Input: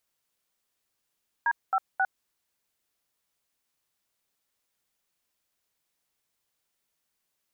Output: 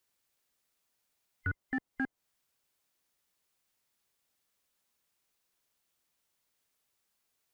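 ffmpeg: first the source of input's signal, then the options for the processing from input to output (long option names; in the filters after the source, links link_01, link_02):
-f lavfi -i "aevalsrc='0.0631*clip(min(mod(t,0.268),0.054-mod(t,0.268))/0.002,0,1)*(eq(floor(t/0.268),0)*(sin(2*PI*941*mod(t,0.268))+sin(2*PI*1633*mod(t,0.268)))+eq(floor(t/0.268),1)*(sin(2*PI*770*mod(t,0.268))+sin(2*PI*1336*mod(t,0.268)))+eq(floor(t/0.268),2)*(sin(2*PI*770*mod(t,0.268))+sin(2*PI*1477*mod(t,0.268))))':duration=0.804:sample_rate=44100"
-filter_complex "[0:a]afftfilt=real='real(if(between(b,1,1008),(2*floor((b-1)/48)+1)*48-b,b),0)':imag='imag(if(between(b,1,1008),(2*floor((b-1)/48)+1)*48-b,b),0)*if(between(b,1,1008),-1,1)':win_size=2048:overlap=0.75,acrossover=split=760|1000[link_01][link_02][link_03];[link_01]asoftclip=type=hard:threshold=-31.5dB[link_04];[link_03]acompressor=threshold=-41dB:ratio=6[link_05];[link_04][link_02][link_05]amix=inputs=3:normalize=0"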